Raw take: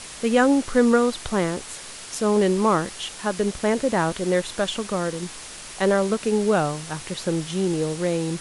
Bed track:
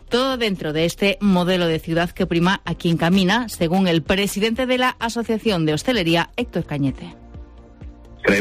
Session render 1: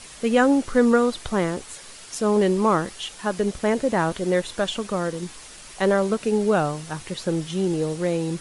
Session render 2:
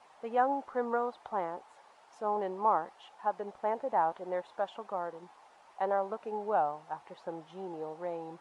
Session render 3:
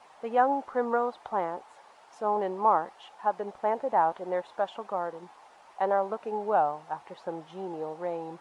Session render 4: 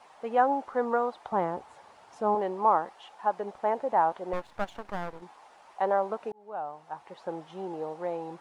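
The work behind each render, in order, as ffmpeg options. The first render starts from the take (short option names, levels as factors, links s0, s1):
-af "afftdn=nr=6:nf=-39"
-af "bandpass=f=830:t=q:w=4.1:csg=0"
-af "volume=1.68"
-filter_complex "[0:a]asettb=1/sr,asplit=3[s0][s1][s2];[s0]atrim=end=1.324[s3];[s1]atrim=start=1.32:end=2.35,asetpts=PTS-STARTPTS,afade=t=in:d=0.004:c=qsin,afade=t=out:st=1.026:d=0.004:c=qsin,equalizer=f=85:t=o:w=2.6:g=14.5[s4];[s2]atrim=start=2.346[s5];[s3][s4]acrossfade=d=0.004:c1=hsin:c2=qsin[s6];[s6][s5]acrossfade=d=0.004:c1=qsin:c2=hsin,asettb=1/sr,asplit=3[s7][s8][s9];[s7]atrim=end=4.334[s10];[s8]atrim=start=4.33:end=5.22,asetpts=PTS-STARTPTS,afade=t=in:d=0.004:c=qsin,afade=t=out:st=0.886:d=0.004:c=qsin,aeval=exprs='max(val(0),0)':c=same[s11];[s9]atrim=start=5.216[s12];[s10][s11]acrossfade=d=0.004:c1=hsin:c2=qsin[s13];[s13][s12]acrossfade=d=0.004:c1=qsin:c2=hsin,asplit=2[s14][s15];[s14]atrim=end=6.32,asetpts=PTS-STARTPTS,afade=t=out:st=6.316:d=0.004:c=hsin[s16];[s15]atrim=start=6.32,asetpts=PTS-STARTPTS,afade=t=in:d=0.99[s17];[s16][s17]concat=n=2:v=0:a=1"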